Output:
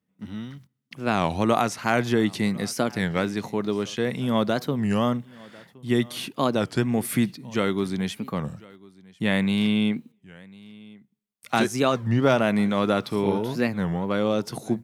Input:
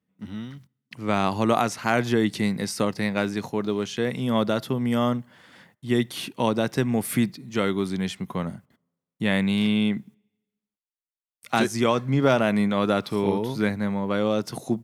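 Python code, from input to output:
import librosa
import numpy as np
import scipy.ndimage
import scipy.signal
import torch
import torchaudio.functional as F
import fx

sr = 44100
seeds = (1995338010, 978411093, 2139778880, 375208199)

p1 = x + fx.echo_single(x, sr, ms=1048, db=-23.5, dry=0)
y = fx.record_warp(p1, sr, rpm=33.33, depth_cents=250.0)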